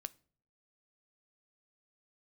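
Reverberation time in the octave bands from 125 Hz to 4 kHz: 0.75, 0.65, 0.60, 0.40, 0.35, 0.35 seconds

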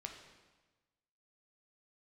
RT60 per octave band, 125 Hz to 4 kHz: 1.4, 1.3, 1.2, 1.2, 1.2, 1.1 seconds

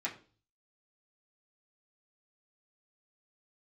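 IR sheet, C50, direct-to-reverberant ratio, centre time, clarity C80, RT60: 12.5 dB, −6.0 dB, 15 ms, 17.0 dB, 0.40 s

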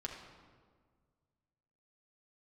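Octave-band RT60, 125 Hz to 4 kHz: 2.5, 2.0, 1.8, 1.6, 1.2, 1.0 seconds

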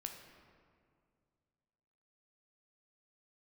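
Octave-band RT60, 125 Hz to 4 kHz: 2.8, 2.5, 2.3, 2.1, 1.6, 1.2 seconds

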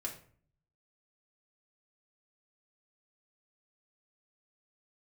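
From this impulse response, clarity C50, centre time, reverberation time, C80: 9.5 dB, 17 ms, 0.50 s, 14.0 dB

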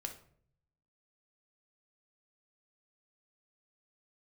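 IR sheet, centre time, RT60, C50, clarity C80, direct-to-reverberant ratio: 13 ms, 0.60 s, 9.5 dB, 15.0 dB, 4.0 dB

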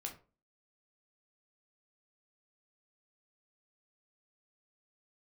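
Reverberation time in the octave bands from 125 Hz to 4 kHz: 0.40, 0.45, 0.40, 0.35, 0.25, 0.20 seconds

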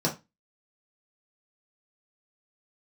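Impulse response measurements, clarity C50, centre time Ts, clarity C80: 12.5 dB, 16 ms, 20.5 dB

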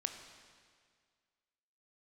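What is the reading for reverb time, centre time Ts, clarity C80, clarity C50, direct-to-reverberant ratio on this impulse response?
1.9 s, 32 ms, 8.5 dB, 7.5 dB, 5.5 dB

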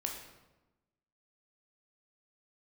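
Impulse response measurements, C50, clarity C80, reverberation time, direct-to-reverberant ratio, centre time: 5.0 dB, 7.0 dB, 1.1 s, 1.0 dB, 37 ms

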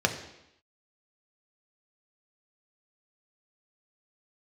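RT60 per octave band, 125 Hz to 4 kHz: 0.75, 0.85, 0.80, 0.85, 0.85, 0.85 seconds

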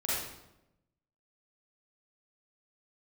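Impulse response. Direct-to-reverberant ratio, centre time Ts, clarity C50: −9.0 dB, 82 ms, −3.0 dB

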